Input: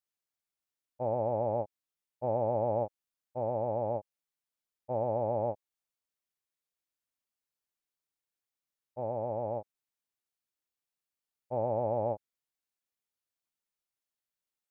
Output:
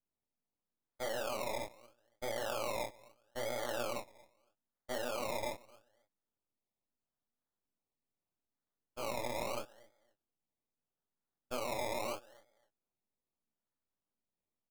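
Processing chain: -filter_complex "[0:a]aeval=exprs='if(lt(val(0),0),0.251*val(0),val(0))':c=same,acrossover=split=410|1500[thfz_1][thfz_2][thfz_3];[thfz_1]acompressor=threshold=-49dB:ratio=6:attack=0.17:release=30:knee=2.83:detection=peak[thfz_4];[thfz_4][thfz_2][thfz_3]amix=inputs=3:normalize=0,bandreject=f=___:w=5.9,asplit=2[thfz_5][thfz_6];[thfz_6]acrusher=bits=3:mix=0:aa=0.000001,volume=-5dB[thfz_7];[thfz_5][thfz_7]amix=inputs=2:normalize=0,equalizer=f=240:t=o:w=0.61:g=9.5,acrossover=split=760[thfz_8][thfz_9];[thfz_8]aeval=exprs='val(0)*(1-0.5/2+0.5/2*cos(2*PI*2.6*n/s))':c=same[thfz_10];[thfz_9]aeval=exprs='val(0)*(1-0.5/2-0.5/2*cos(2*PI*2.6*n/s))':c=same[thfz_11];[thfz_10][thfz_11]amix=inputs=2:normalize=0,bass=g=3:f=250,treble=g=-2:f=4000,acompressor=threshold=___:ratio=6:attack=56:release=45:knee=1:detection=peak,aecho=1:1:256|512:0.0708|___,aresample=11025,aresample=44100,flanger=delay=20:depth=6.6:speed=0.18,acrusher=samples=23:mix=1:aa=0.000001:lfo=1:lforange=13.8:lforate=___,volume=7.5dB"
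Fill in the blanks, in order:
1100, -46dB, 0.0149, 0.78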